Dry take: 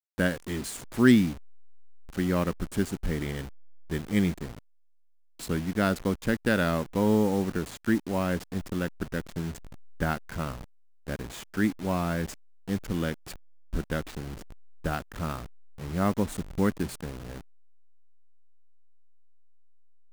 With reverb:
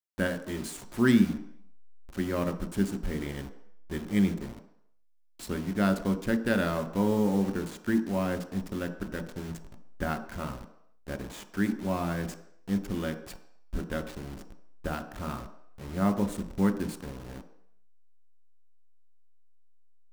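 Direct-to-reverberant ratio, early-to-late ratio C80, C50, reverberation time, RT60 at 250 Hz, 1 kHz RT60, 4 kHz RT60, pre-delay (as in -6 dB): 6.5 dB, 14.0 dB, 12.0 dB, 0.70 s, 0.55 s, 0.75 s, 0.70 s, 3 ms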